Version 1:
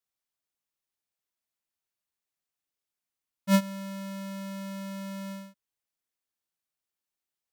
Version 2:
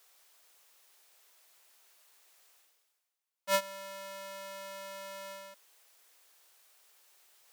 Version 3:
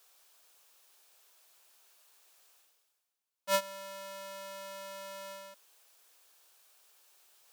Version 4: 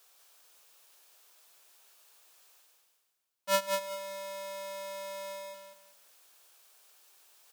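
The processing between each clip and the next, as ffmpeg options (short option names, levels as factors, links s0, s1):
-af "highpass=f=410:w=0.5412,highpass=f=410:w=1.3066,areverse,acompressor=mode=upward:threshold=0.00708:ratio=2.5,areverse"
-af "equalizer=f=2000:w=6.2:g=-6"
-af "aecho=1:1:193|386|579:0.562|0.141|0.0351,volume=1.19"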